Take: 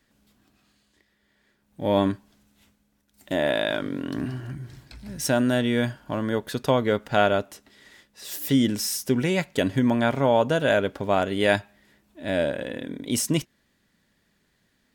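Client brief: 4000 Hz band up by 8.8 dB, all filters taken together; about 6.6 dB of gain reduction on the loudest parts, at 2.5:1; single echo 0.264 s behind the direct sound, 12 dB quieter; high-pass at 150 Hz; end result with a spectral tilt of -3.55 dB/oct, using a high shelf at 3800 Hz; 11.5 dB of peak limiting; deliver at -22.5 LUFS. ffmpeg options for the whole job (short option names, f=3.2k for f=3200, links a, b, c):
-af "highpass=150,highshelf=f=3.8k:g=6.5,equalizer=f=4k:t=o:g=7.5,acompressor=threshold=-24dB:ratio=2.5,alimiter=limit=-18dB:level=0:latency=1,aecho=1:1:264:0.251,volume=8dB"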